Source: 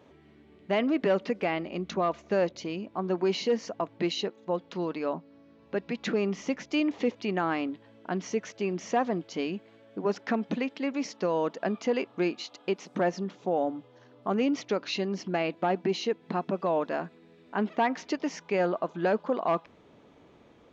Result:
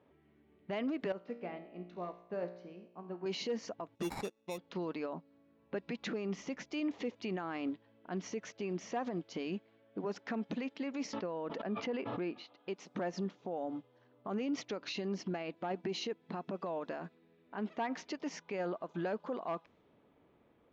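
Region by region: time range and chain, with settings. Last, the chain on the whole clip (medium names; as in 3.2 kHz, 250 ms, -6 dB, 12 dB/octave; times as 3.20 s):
1.12–3.26 s: treble shelf 2.1 kHz -9 dB + feedback comb 59 Hz, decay 1.2 s, mix 80%
3.95–4.58 s: sample-rate reducer 3.1 kHz + upward expansion, over -42 dBFS
11.13–12.57 s: distance through air 240 m + swell ahead of each attack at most 57 dB/s
whole clip: level-controlled noise filter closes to 2.7 kHz, open at -26 dBFS; peak limiter -28.5 dBFS; upward expansion 1.5:1, over -54 dBFS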